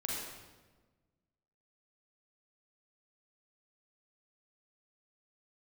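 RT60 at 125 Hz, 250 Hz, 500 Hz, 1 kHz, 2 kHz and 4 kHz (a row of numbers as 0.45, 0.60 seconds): 1.8, 1.7, 1.4, 1.2, 1.1, 0.95 seconds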